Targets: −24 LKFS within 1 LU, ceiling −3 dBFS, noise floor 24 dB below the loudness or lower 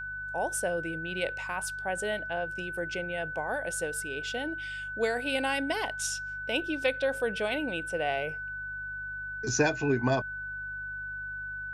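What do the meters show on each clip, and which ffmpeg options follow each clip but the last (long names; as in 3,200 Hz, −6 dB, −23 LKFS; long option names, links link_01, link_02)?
mains hum 50 Hz; hum harmonics up to 150 Hz; level of the hum −48 dBFS; interfering tone 1,500 Hz; level of the tone −35 dBFS; integrated loudness −31.5 LKFS; sample peak −12.0 dBFS; target loudness −24.0 LKFS
→ -af "bandreject=frequency=50:width_type=h:width=4,bandreject=frequency=100:width_type=h:width=4,bandreject=frequency=150:width_type=h:width=4"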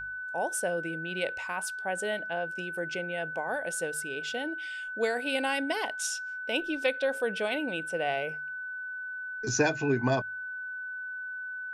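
mains hum none found; interfering tone 1,500 Hz; level of the tone −35 dBFS
→ -af "bandreject=frequency=1500:width=30"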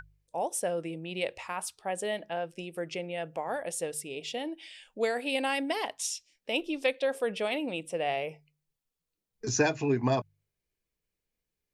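interfering tone none found; integrated loudness −32.5 LKFS; sample peak −12.0 dBFS; target loudness −24.0 LKFS
→ -af "volume=8.5dB"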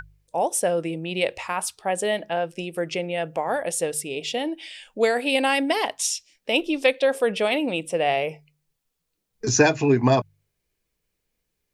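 integrated loudness −24.0 LKFS; sample peak −3.5 dBFS; background noise floor −78 dBFS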